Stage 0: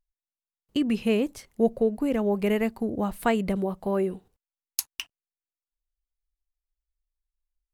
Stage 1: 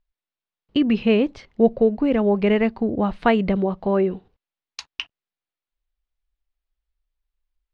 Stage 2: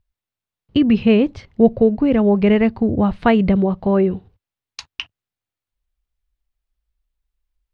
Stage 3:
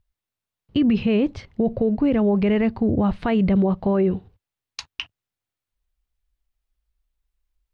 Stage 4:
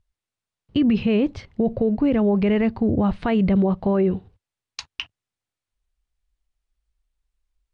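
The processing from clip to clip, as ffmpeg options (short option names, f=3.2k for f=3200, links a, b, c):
-af "lowpass=f=4.2k:w=0.5412,lowpass=f=4.2k:w=1.3066,volume=6dB"
-af "equalizer=f=95:w=0.97:g=14.5,volume=1.5dB"
-af "alimiter=limit=-12dB:level=0:latency=1:release=30"
-af "aresample=22050,aresample=44100"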